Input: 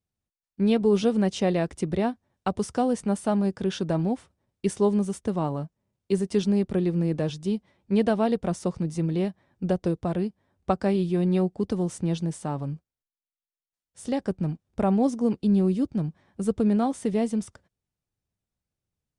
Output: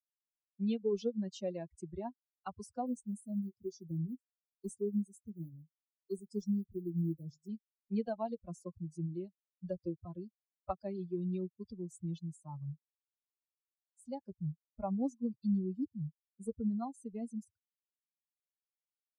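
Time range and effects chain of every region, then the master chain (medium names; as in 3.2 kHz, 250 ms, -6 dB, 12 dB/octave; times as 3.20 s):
2.86–7.49 s: block-companded coder 7-bit + Chebyshev band-stop 380–5700 Hz + doubling 24 ms -10.5 dB
whole clip: expander on every frequency bin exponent 3; peaking EQ 1.9 kHz -15 dB 0.73 oct; three bands compressed up and down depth 40%; trim -5.5 dB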